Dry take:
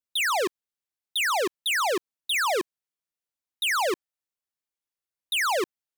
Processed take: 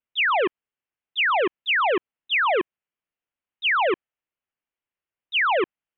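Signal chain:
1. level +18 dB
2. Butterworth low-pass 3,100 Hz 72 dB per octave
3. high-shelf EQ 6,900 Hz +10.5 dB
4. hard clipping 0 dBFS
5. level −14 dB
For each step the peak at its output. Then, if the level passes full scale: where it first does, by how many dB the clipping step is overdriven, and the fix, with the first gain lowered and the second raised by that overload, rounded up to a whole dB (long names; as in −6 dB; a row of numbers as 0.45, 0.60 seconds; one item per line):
−6.0, −2.5, −2.0, −2.0, −16.0 dBFS
no step passes full scale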